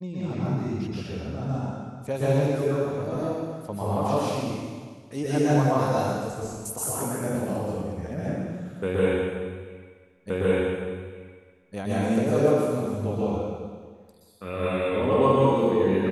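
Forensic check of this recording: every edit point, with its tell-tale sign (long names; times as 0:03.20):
0:10.30: the same again, the last 1.46 s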